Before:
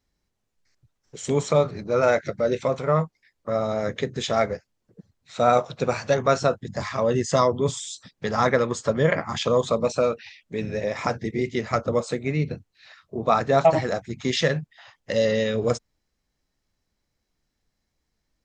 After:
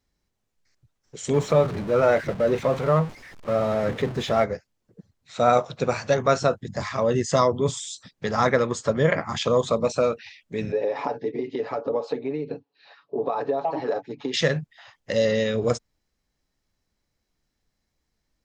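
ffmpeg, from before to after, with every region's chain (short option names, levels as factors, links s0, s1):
-filter_complex "[0:a]asettb=1/sr,asplit=3[s0][s1][s2];[s0]atrim=end=1.334[s3];[s1]atrim=start=1.33:end=4.44,asetpts=PTS-STARTPTS,afade=t=in:d=0.004:c=qsin,afade=t=out:st=3.106:d=0.004:c=qsin,aeval=exprs='val(0)+0.5*0.0422*sgn(val(0))':c=same,agate=range=0.0224:threshold=0.0355:ratio=3:release=100:detection=peak,aemphasis=mode=reproduction:type=75kf[s4];[s2]atrim=start=4.436[s5];[s3][s4]acrossfade=d=0.004:c1=hsin:c2=qsin[s6];[s6][s5]acrossfade=d=0.004:c1=qsin:c2=hsin,asettb=1/sr,asplit=3[s7][s8][s9];[s7]atrim=end=10.724[s10];[s8]atrim=start=10.72:end=14.34,asetpts=PTS-STARTPTS,afade=t=in:d=0.004:c=qsin,afade=t=out:st=3.616:d=0.004:c=qsin,aecho=1:1:7.1:0.64,atrim=end_sample=159642,acompressor=threshold=0.0631:ratio=10:attack=3.2:release=140:knee=1:detection=peak,highpass=270,equalizer=f=290:t=q:w=4:g=6,equalizer=f=460:t=q:w=4:g=9,equalizer=f=860:t=q:w=4:g=8,equalizer=f=1400:t=q:w=4:g=-5,equalizer=f=2100:t=q:w=4:g=-9,equalizer=f=3400:t=q:w=4:g=-5,lowpass=f=4100:w=0.5412,lowpass=f=4100:w=1.3066[s11];[s9]atrim=start=14.336[s12];[s10][s11]acrossfade=d=0.004:c1=hsin:c2=qsin[s13];[s13][s12]acrossfade=d=0.004:c1=qsin:c2=hsin"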